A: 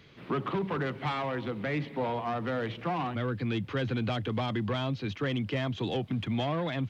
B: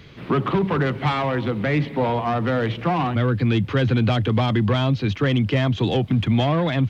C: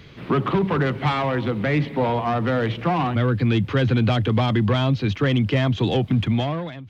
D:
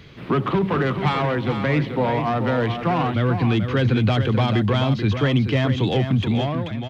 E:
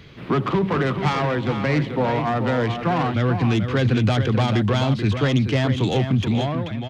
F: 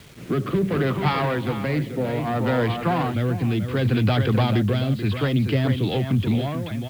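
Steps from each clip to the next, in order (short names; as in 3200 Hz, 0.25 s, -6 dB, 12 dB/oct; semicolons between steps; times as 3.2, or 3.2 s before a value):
low shelf 120 Hz +8.5 dB; gain +9 dB
ending faded out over 0.70 s; reverse; upward compressor, threshold -39 dBFS; reverse
echo 0.435 s -8 dB
self-modulated delay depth 0.16 ms
rotary speaker horn 0.65 Hz, later 5 Hz, at 4.74; downsampling 11025 Hz; bit-crush 8-bit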